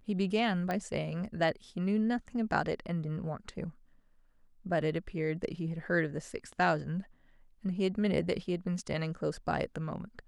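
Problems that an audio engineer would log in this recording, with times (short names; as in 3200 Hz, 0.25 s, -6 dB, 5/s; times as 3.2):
0.71 pop -21 dBFS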